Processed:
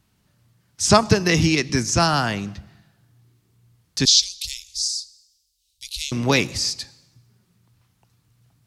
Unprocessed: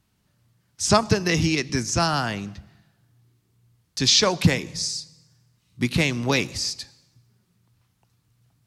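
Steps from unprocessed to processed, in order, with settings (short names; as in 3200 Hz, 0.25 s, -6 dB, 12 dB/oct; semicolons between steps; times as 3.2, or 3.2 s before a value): 4.05–6.12 inverse Chebyshev band-stop 120–1500 Hz, stop band 50 dB; gain +3.5 dB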